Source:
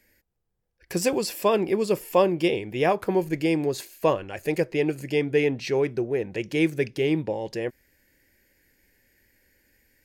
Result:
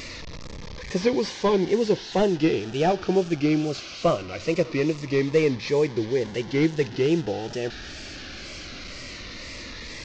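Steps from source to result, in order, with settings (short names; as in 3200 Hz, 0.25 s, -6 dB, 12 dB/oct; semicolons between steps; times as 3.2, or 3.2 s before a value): delta modulation 32 kbps, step -32.5 dBFS; wow and flutter 130 cents; cascading phaser falling 0.21 Hz; gain +2.5 dB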